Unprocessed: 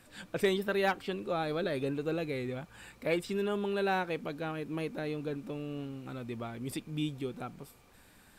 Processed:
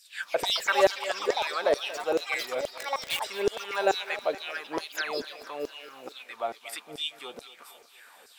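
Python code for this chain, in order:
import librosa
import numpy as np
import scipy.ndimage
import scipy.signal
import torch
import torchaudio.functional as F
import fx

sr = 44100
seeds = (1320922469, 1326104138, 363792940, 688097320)

p1 = fx.filter_lfo_highpass(x, sr, shape='saw_down', hz=2.3, low_hz=420.0, high_hz=5600.0, q=4.0)
p2 = fx.quant_dither(p1, sr, seeds[0], bits=6, dither='none', at=(2.7, 3.22))
p3 = fx.echo_pitch(p2, sr, ms=193, semitones=6, count=2, db_per_echo=-6.0)
p4 = fx.spec_paint(p3, sr, seeds[1], shape='fall', start_s=4.97, length_s=0.24, low_hz=220.0, high_hz=7600.0, level_db=-41.0)
p5 = p4 + fx.echo_thinned(p4, sr, ms=232, feedback_pct=60, hz=230.0, wet_db=-16.0, dry=0)
y = p5 * 10.0 ** (4.5 / 20.0)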